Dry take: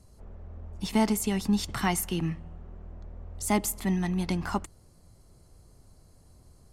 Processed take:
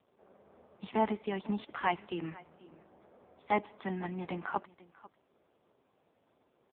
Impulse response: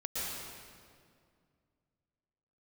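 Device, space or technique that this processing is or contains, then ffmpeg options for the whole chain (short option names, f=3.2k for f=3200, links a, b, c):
satellite phone: -af "highpass=350,lowpass=3.1k,aecho=1:1:494:0.0891" -ar 8000 -c:a libopencore_amrnb -b:a 5150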